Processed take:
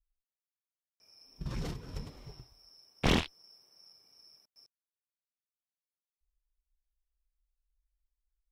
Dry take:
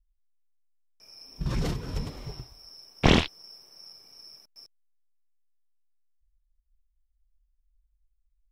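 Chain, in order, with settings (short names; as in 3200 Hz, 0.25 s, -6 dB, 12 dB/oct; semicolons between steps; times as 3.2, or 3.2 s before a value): added harmonics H 7 -20 dB, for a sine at -5.5 dBFS; soft clip -19 dBFS, distortion -6 dB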